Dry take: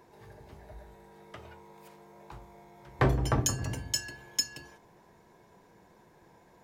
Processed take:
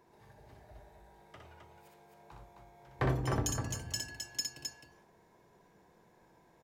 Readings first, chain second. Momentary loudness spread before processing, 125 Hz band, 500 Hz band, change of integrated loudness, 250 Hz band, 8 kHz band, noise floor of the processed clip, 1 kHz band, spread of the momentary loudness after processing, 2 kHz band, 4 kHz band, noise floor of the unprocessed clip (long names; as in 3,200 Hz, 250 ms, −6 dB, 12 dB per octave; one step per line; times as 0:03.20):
21 LU, −4.5 dB, −5.0 dB, −5.5 dB, −4.5 dB, −5.0 dB, −65 dBFS, −5.0 dB, 20 LU, −5.0 dB, −5.5 dB, −61 dBFS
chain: loudspeakers that aren't time-aligned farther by 21 metres −4 dB, 90 metres −5 dB
level −7.5 dB